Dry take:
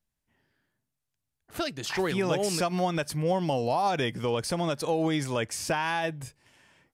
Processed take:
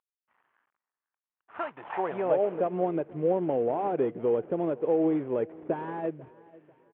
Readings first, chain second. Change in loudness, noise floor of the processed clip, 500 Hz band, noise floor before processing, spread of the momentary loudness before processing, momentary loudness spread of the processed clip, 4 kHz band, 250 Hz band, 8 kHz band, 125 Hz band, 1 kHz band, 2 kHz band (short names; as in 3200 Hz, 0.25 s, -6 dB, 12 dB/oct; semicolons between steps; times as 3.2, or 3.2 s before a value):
-0.5 dB, under -85 dBFS, +2.5 dB, -84 dBFS, 7 LU, 10 LU, under -20 dB, 0.0 dB, under -40 dB, -8.0 dB, -3.5 dB, -11.5 dB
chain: CVSD 16 kbps; on a send: feedback echo 0.493 s, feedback 37%, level -22 dB; on the sum: band-pass sweep 1100 Hz -> 400 Hz, 1.56–2.86; gain +7 dB